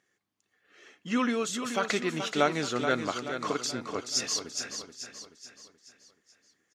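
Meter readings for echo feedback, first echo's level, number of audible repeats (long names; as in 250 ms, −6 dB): 46%, −8.0 dB, 5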